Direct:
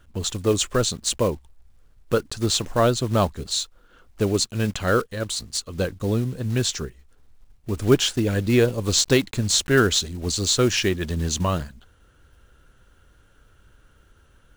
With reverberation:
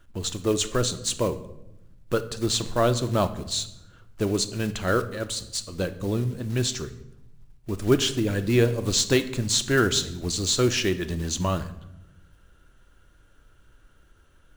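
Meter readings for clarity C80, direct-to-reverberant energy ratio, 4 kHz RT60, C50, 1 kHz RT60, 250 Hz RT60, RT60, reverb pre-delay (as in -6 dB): 16.5 dB, 9.5 dB, 0.60 s, 14.0 dB, 0.80 s, 1.4 s, 0.85 s, 3 ms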